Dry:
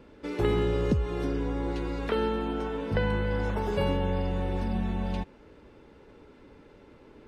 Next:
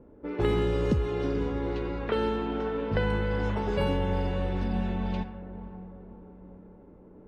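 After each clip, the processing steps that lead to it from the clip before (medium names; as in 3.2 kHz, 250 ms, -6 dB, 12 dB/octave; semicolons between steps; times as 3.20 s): echo that smears into a reverb 530 ms, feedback 48%, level -12 dB; level-controlled noise filter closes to 690 Hz, open at -21.5 dBFS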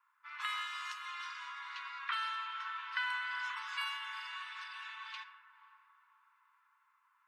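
steep high-pass 1 kHz 96 dB/octave; trim +1 dB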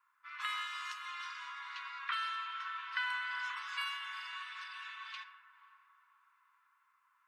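band-stop 890 Hz, Q 12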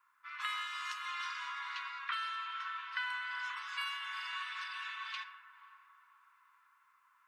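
gain riding within 3 dB 0.5 s; trim +1 dB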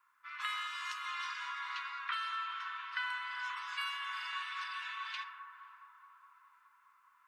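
bucket-brigade echo 210 ms, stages 2048, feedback 78%, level -8.5 dB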